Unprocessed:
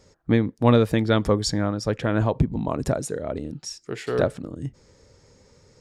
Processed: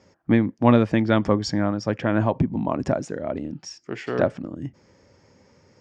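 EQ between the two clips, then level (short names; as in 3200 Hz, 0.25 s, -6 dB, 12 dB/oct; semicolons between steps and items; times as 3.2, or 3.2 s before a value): speaker cabinet 120–6100 Hz, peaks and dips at 140 Hz -5 dB, 450 Hz -8 dB, 1300 Hz -3 dB, 3900 Hz -10 dB; high shelf 4500 Hz -6.5 dB; +3.5 dB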